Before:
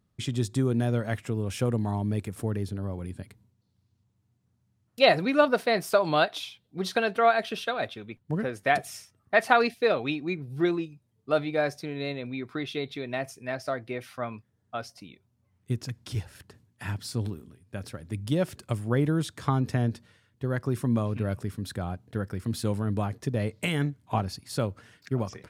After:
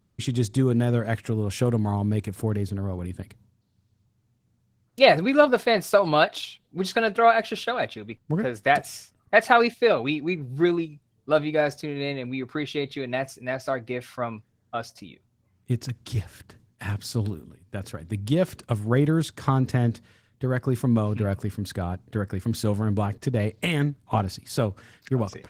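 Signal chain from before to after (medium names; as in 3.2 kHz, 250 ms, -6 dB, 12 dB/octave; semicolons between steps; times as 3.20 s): trim +4 dB; Opus 16 kbps 48 kHz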